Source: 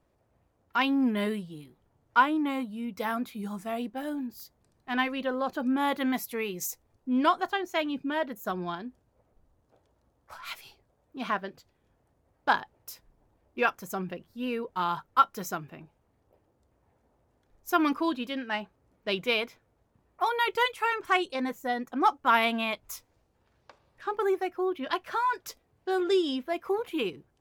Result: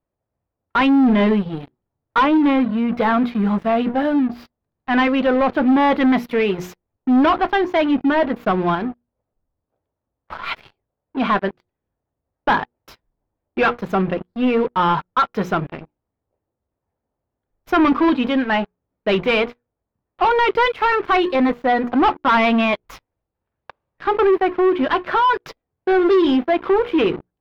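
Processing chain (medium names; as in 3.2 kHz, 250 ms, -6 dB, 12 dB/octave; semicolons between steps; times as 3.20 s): hum notches 60/120/180/240/300/360/420/480 Hz; waveshaping leveller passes 5; distance through air 360 m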